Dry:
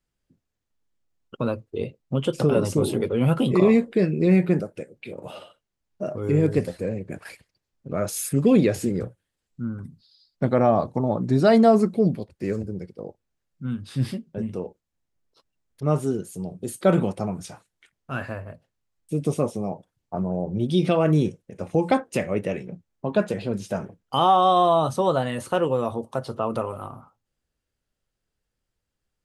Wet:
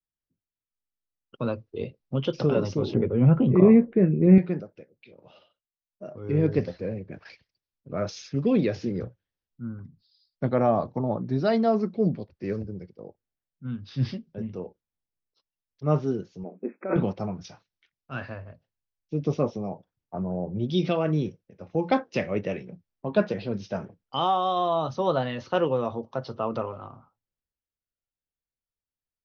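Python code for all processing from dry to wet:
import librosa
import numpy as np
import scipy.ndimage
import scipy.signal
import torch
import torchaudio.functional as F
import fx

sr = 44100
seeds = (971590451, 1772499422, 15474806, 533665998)

y = fx.chain(x, sr, fx.lowpass(hz=2500.0, slope=24),
    fx.low_shelf(hz=410.0, db=10.5), at=(2.94, 4.38))
y = fx.chain(y, sr, fx.brickwall_bandpass(low_hz=190.0, high_hz=2600.0),
    fx.over_compress(threshold_db=-23.0, ratio=-1.0), at=(16.43, 16.96))
y = scipy.signal.sosfilt(scipy.signal.butter(16, 6000.0, 'lowpass', fs=sr, output='sos'), y)
y = fx.rider(y, sr, range_db=3, speed_s=0.5)
y = fx.band_widen(y, sr, depth_pct=40)
y = F.gain(torch.from_numpy(y), -5.0).numpy()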